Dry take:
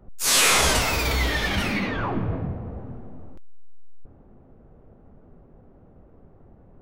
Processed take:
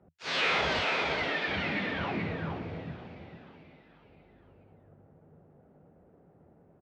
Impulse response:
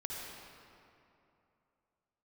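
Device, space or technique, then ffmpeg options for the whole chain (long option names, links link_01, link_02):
frequency-shifting delay pedal into a guitar cabinet: -filter_complex "[0:a]asettb=1/sr,asplit=3[link_01][link_02][link_03];[link_01]atrim=end=0.814[link_04];[link_02]atrim=start=0.81:end=1.48,asetpts=PTS-STARTPTS,afade=type=in:duration=0.004:curve=qsin,afade=type=out:start_time=0.666:duration=0.004:curve=qsin,highpass=frequency=200:width=0.5412,highpass=frequency=200:width=1.3066[link_05];[link_03]atrim=start=1.476[link_06];[link_04][link_05]acrossfade=duration=0.004:curve1=hsin:curve2=qsin[link_07];[link_07][link_06]acrossfade=duration=0.004:curve1=qsin:curve2=hsin,bass=frequency=250:gain=-9,treble=frequency=4000:gain=-10,aecho=1:1:432:0.562,asplit=6[link_08][link_09][link_10][link_11][link_12][link_13];[link_09]adelay=483,afreqshift=50,volume=-17dB[link_14];[link_10]adelay=966,afreqshift=100,volume=-22.2dB[link_15];[link_11]adelay=1449,afreqshift=150,volume=-27.4dB[link_16];[link_12]adelay=1932,afreqshift=200,volume=-32.6dB[link_17];[link_13]adelay=2415,afreqshift=250,volume=-37.8dB[link_18];[link_08][link_14][link_15][link_16][link_17][link_18]amix=inputs=6:normalize=0,highpass=81,equalizer=frequency=83:width_type=q:width=4:gain=6,equalizer=frequency=160:width_type=q:width=4:gain=9,equalizer=frequency=1100:width_type=q:width=4:gain=-5,lowpass=frequency=4500:width=0.5412,lowpass=frequency=4500:width=1.3066,volume=-5.5dB"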